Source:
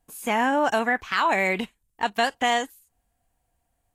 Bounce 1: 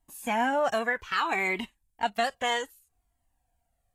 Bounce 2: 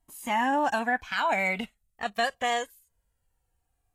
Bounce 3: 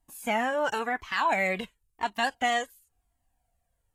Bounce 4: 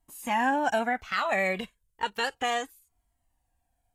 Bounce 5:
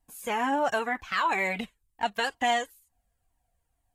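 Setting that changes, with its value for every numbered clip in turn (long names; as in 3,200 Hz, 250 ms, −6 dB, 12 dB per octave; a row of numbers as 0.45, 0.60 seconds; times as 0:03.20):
flanger whose copies keep moving one way, speed: 0.63, 0.21, 0.95, 0.32, 2.1 Hertz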